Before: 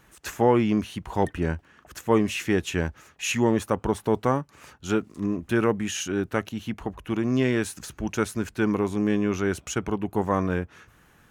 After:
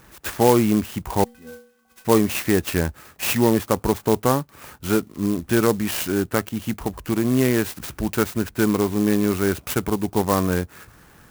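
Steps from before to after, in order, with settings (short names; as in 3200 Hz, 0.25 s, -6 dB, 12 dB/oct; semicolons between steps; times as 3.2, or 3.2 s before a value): in parallel at -3 dB: compressor, threshold -35 dBFS, peak gain reduction 19.5 dB; 1.24–2.05 on the sum: metallic resonator 230 Hz, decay 0.58 s, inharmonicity 0.03; clock jitter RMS 0.061 ms; gain +3 dB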